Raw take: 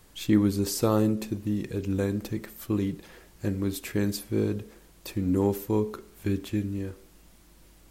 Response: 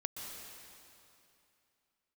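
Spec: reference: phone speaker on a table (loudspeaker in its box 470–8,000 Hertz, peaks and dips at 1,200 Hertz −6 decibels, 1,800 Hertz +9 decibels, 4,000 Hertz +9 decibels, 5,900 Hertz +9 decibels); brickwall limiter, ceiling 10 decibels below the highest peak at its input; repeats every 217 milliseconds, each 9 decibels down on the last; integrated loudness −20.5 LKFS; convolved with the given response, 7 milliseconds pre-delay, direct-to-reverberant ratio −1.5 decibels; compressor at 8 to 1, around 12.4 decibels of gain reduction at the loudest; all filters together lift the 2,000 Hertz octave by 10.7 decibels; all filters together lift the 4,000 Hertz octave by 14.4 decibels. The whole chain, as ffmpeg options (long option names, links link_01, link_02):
-filter_complex "[0:a]equalizer=frequency=2000:width_type=o:gain=4.5,equalizer=frequency=4000:width_type=o:gain=9,acompressor=threshold=-29dB:ratio=8,alimiter=level_in=5.5dB:limit=-24dB:level=0:latency=1,volume=-5.5dB,aecho=1:1:217|434|651|868:0.355|0.124|0.0435|0.0152,asplit=2[link_01][link_02];[1:a]atrim=start_sample=2205,adelay=7[link_03];[link_02][link_03]afir=irnorm=-1:irlink=0,volume=1dB[link_04];[link_01][link_04]amix=inputs=2:normalize=0,highpass=frequency=470:width=0.5412,highpass=frequency=470:width=1.3066,equalizer=frequency=1200:width_type=q:width=4:gain=-6,equalizer=frequency=1800:width_type=q:width=4:gain=9,equalizer=frequency=4000:width_type=q:width=4:gain=9,equalizer=frequency=5900:width_type=q:width=4:gain=9,lowpass=frequency=8000:width=0.5412,lowpass=frequency=8000:width=1.3066,volume=15dB"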